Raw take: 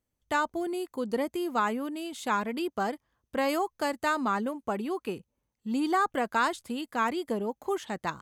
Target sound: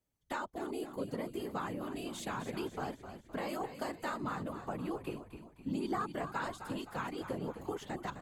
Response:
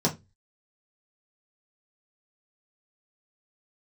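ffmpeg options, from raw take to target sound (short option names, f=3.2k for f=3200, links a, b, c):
-filter_complex "[0:a]acrossover=split=150[a][b];[b]acompressor=threshold=-37dB:ratio=2.5[c];[a][c]amix=inputs=2:normalize=0,afftfilt=real='hypot(re,im)*cos(2*PI*random(0))':imag='hypot(re,im)*sin(2*PI*random(1))':win_size=512:overlap=0.75,asplit=6[d][e][f][g][h][i];[e]adelay=258,afreqshift=-57,volume=-10dB[j];[f]adelay=516,afreqshift=-114,volume=-16.4dB[k];[g]adelay=774,afreqshift=-171,volume=-22.8dB[l];[h]adelay=1032,afreqshift=-228,volume=-29.1dB[m];[i]adelay=1290,afreqshift=-285,volume=-35.5dB[n];[d][j][k][l][m][n]amix=inputs=6:normalize=0,volume=3.5dB"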